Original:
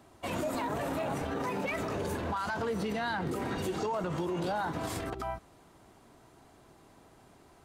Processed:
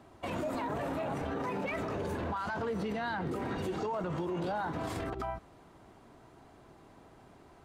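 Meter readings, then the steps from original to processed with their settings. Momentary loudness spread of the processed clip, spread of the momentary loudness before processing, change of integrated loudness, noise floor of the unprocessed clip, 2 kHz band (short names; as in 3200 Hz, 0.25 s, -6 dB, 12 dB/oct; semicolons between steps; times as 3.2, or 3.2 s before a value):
3 LU, 4 LU, -1.5 dB, -59 dBFS, -2.5 dB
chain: high shelf 4700 Hz -10.5 dB; limiter -30 dBFS, peak gain reduction 4 dB; gain +2 dB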